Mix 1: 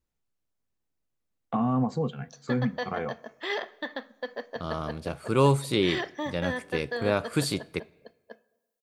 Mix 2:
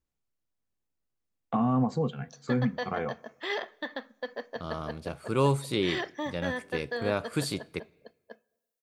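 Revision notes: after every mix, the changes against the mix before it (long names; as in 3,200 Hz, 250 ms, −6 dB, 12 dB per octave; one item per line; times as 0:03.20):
second voice −3.5 dB
background: send −7.0 dB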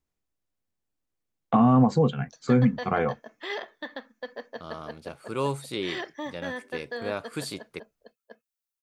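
first voice +9.0 dB
second voice: add low-shelf EQ 170 Hz −9 dB
reverb: off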